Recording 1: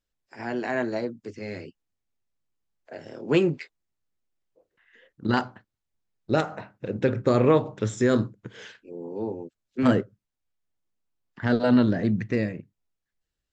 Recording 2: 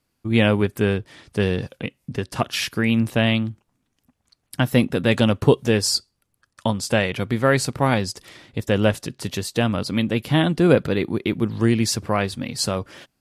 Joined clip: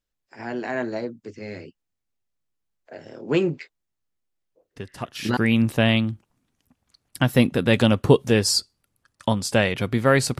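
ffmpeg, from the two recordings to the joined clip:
-filter_complex "[1:a]asplit=2[s0][s1];[0:a]apad=whole_dur=10.39,atrim=end=10.39,atrim=end=5.372[s2];[s1]atrim=start=2.748:end=7.77[s3];[s0]atrim=start=2.14:end=2.75,asetpts=PTS-STARTPTS,volume=0.335,afade=t=in:d=0.004:c=hsin,afade=t=out:st=0.606:d=0.004:c=hsin,adelay=4760[s4];[s2][s3]acrossfade=d=0.004:c1=hsin:c2=hsin[s5];[s5][s4]amix=inputs=2:normalize=0"

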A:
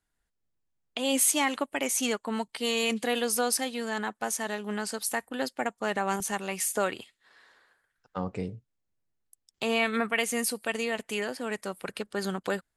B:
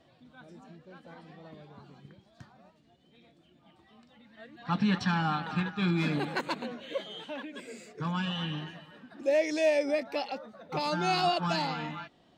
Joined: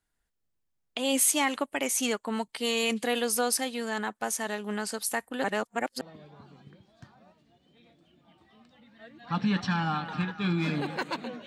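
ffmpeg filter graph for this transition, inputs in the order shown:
-filter_complex "[0:a]apad=whole_dur=11.46,atrim=end=11.46,asplit=2[s0][s1];[s0]atrim=end=5.442[s2];[s1]atrim=start=5.438:end=6.012,asetpts=PTS-STARTPTS,areverse[s3];[1:a]atrim=start=1.388:end=6.84[s4];[s2][s3]acrossfade=d=0.004:c1=hsin:c2=hsin[s5];[s5][s4]acrossfade=d=0.004:c1=hsin:c2=hsin"

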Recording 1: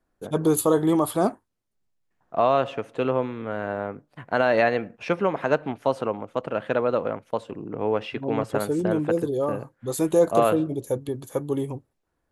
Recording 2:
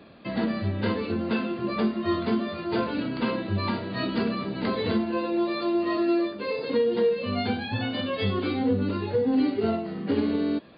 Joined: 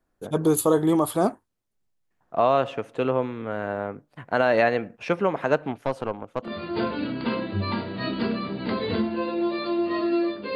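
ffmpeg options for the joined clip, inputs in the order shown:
-filter_complex "[0:a]asettb=1/sr,asplit=3[s0][s1][s2];[s0]atrim=end=5.814[s3];[s1]atrim=start=5.81:end=6.52,asetpts=PTS-STARTPTS,afade=t=in:d=0.004:c=qsin,afade=t=out:st=0.706:d=0.004:c=qsin,aeval=exprs='(tanh(7.08*val(0)+0.65)-tanh(0.65))/7.08':c=same[s4];[s2]atrim=start=6.516[s5];[s3][s4]acrossfade=d=0.004:c1=hsin:c2=qsin[s6];[s6][s5]acrossfade=d=0.004:c1=qsin:c2=hsin,apad=whole_dur=10.55,atrim=end=10.55,atrim=end=6.52,asetpts=PTS-STARTPTS[s7];[1:a]atrim=start=2.38:end=6.51,asetpts=PTS-STARTPTS[s8];[s7][s8]acrossfade=d=0.1:c1=tri:c2=tri"

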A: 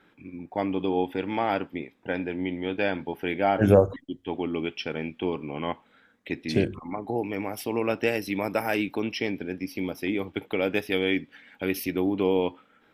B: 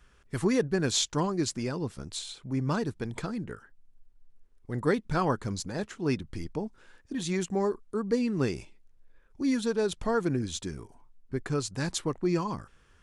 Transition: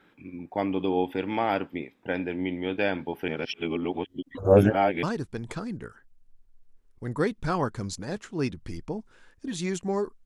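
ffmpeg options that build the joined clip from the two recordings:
-filter_complex "[0:a]apad=whole_dur=10.25,atrim=end=10.25,asplit=2[s0][s1];[s0]atrim=end=3.282[s2];[s1]atrim=start=3.278:end=5.032,asetpts=PTS-STARTPTS,areverse[s3];[1:a]atrim=start=2.698:end=7.92[s4];[s2][s3]acrossfade=d=0.004:c1=hsin:c2=hsin[s5];[s5][s4]acrossfade=d=0.004:c1=hsin:c2=hsin"

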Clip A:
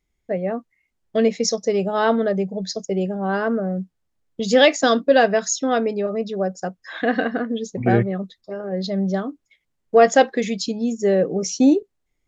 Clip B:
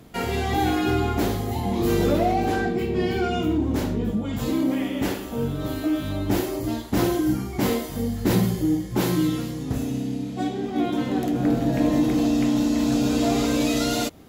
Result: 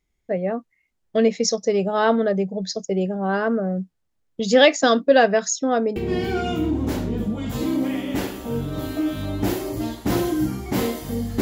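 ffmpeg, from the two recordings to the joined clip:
-filter_complex "[0:a]asettb=1/sr,asplit=3[s0][s1][s2];[s0]atrim=end=5.504[s3];[s1]atrim=start=5.5:end=5.96,asetpts=PTS-STARTPTS,afade=t=in:d=0.004:c=qsin,afade=t=out:st=0.456:d=0.004:c=qsin,equalizer=f=2600:t=o:w=1.4:g=-8[s4];[s2]atrim=start=5.956[s5];[s3][s4]acrossfade=d=0.004:c1=hsin:c2=qsin[s6];[s6][s5]acrossfade=d=0.004:c1=qsin:c2=hsin,apad=whole_dur=11.41,atrim=end=11.41,atrim=end=5.962[s7];[1:a]atrim=start=2.828:end=8.28[s8];[s7][s8]acrossfade=d=0.004:c1=hsin:c2=hsin"

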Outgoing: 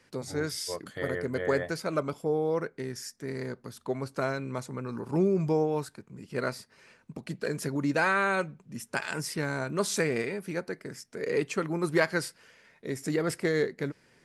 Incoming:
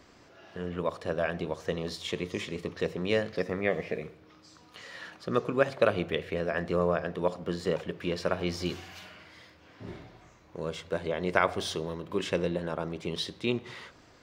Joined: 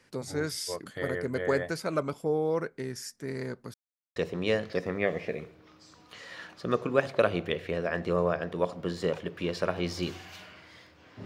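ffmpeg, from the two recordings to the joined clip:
-filter_complex "[0:a]apad=whole_dur=11.25,atrim=end=11.25,asplit=2[s0][s1];[s0]atrim=end=3.74,asetpts=PTS-STARTPTS,afade=t=out:st=3.736:d=0.004:c=hsin[s2];[s1]atrim=start=3.74:end=4.16,asetpts=PTS-STARTPTS,volume=0[s3];[1:a]atrim=start=2.79:end=9.88,asetpts=PTS-STARTPTS,afade=t=in:d=0.004:c=hsin[s4];[s2][s3][s4]concat=n=3:v=0:a=1"

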